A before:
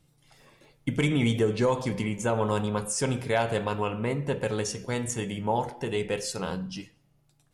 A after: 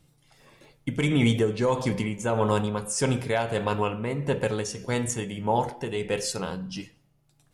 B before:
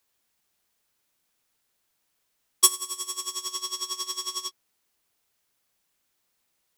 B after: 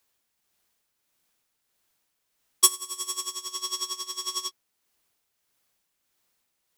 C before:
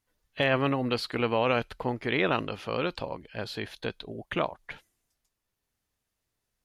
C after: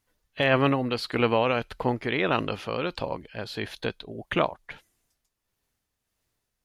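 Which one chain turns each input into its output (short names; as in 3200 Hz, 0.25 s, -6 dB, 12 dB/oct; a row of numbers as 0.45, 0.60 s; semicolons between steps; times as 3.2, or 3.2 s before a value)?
tremolo 1.6 Hz, depth 42%; match loudness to -27 LUFS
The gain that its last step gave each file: +3.5, +1.5, +4.5 dB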